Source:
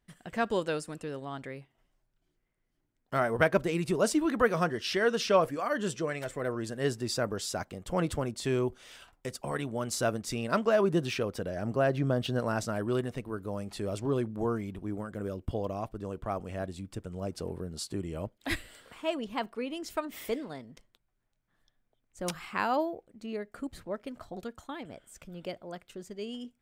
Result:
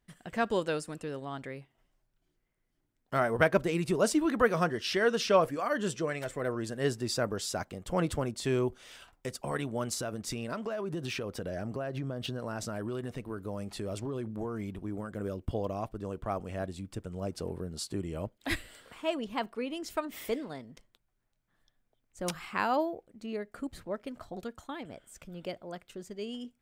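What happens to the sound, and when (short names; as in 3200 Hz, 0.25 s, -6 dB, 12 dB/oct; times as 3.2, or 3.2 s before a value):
9.93–15.16 compressor 10:1, threshold -31 dBFS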